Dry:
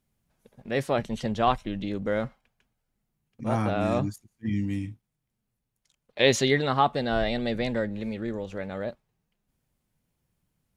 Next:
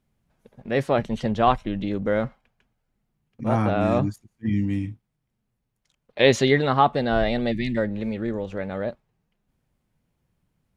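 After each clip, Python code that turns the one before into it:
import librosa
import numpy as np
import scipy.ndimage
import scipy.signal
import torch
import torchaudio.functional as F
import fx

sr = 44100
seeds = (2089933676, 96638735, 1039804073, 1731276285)

y = fx.spec_box(x, sr, start_s=7.52, length_s=0.25, low_hz=380.0, high_hz=1700.0, gain_db=-24)
y = fx.high_shelf(y, sr, hz=4400.0, db=-10.0)
y = y * librosa.db_to_amplitude(4.5)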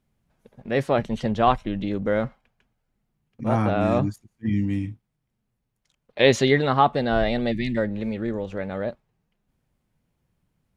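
y = x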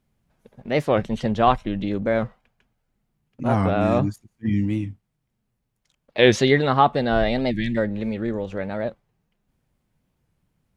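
y = fx.record_warp(x, sr, rpm=45.0, depth_cents=160.0)
y = y * librosa.db_to_amplitude(1.5)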